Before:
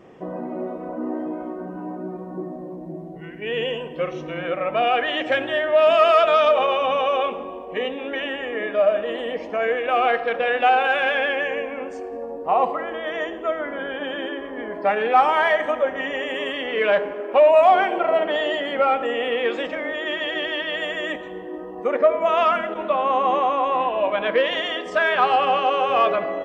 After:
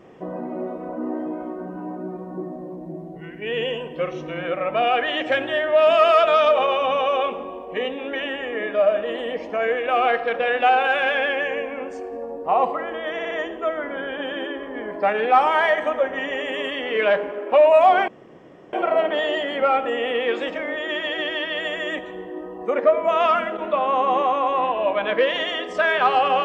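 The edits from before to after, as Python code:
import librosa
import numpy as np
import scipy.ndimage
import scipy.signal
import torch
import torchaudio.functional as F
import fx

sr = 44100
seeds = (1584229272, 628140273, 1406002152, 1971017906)

y = fx.edit(x, sr, fx.stutter(start_s=13.13, slice_s=0.06, count=4),
    fx.insert_room_tone(at_s=17.9, length_s=0.65), tone=tone)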